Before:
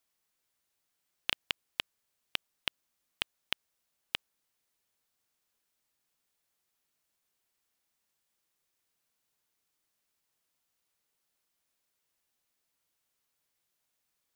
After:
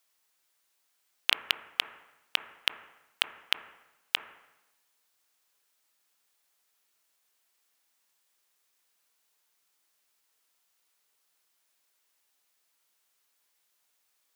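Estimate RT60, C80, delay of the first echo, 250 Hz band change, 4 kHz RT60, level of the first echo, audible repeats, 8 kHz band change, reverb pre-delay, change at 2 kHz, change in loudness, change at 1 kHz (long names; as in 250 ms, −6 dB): 0.95 s, 13.0 dB, no echo audible, −1.0 dB, 0.95 s, no echo audible, no echo audible, +7.0 dB, 18 ms, +6.5 dB, +6.5 dB, +6.5 dB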